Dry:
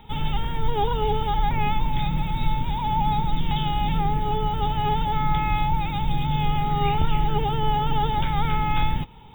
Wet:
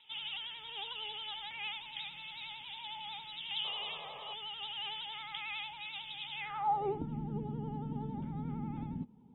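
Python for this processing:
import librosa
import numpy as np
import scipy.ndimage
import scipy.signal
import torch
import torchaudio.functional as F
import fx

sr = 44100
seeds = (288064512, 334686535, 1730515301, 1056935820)

y = fx.filter_sweep_bandpass(x, sr, from_hz=3000.0, to_hz=230.0, start_s=6.33, end_s=7.07, q=4.5)
y = fx.vibrato(y, sr, rate_hz=11.0, depth_cents=75.0)
y = fx.spec_paint(y, sr, seeds[0], shape='noise', start_s=3.64, length_s=0.7, low_hz=390.0, high_hz=1300.0, level_db=-51.0)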